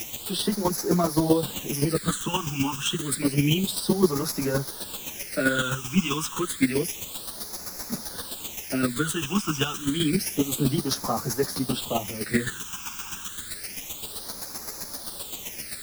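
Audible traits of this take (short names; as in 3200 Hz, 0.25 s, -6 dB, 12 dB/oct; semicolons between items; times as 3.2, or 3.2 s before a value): a quantiser's noise floor 6-bit, dither triangular; phasing stages 8, 0.29 Hz, lowest notch 560–3000 Hz; chopped level 7.7 Hz, depth 60%, duty 15%; a shimmering, thickened sound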